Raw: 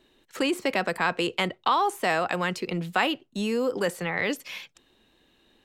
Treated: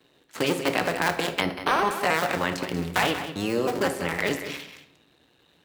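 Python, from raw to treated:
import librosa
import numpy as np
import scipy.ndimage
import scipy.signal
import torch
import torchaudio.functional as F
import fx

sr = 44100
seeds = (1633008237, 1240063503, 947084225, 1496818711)

y = fx.cycle_switch(x, sr, every=2, mode='muted')
y = scipy.signal.sosfilt(scipy.signal.butter(2, 81.0, 'highpass', fs=sr, output='sos'), y)
y = y + 10.0 ** (-11.0 / 20.0) * np.pad(y, (int(187 * sr / 1000.0), 0))[:len(y)]
y = fx.room_shoebox(y, sr, seeds[0], volume_m3=170.0, walls='mixed', distance_m=0.42)
y = fx.resample_linear(y, sr, factor=6, at=(1.41, 1.91))
y = y * librosa.db_to_amplitude(3.0)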